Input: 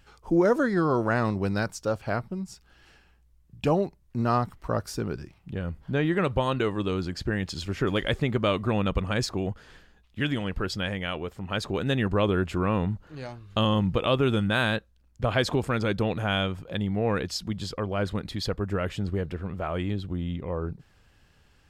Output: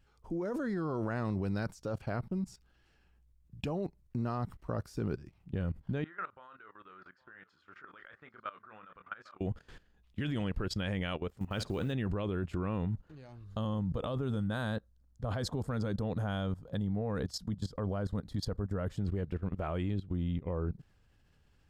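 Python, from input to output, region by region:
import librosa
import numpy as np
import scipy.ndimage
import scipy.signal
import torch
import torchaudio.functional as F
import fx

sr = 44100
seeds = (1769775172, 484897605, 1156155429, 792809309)

y = fx.chain(x, sr, fx.bandpass_q(hz=1400.0, q=4.8),
    fx.doubler(ms=27.0, db=-10.0),
    fx.echo_single(ms=810, db=-20.0), at=(6.04, 9.41))
y = fx.chain(y, sr, fx.room_flutter(wall_m=9.3, rt60_s=0.22),
    fx.quant_float(bits=4), at=(11.36, 11.93))
y = fx.chain(y, sr, fx.peak_eq(hz=2500.0, db=-13.5, octaves=0.7),
    fx.notch(hz=350.0, q=5.1), at=(13.44, 18.99))
y = fx.level_steps(y, sr, step_db=17)
y = fx.low_shelf(y, sr, hz=410.0, db=6.0)
y = F.gain(torch.from_numpy(y), -3.5).numpy()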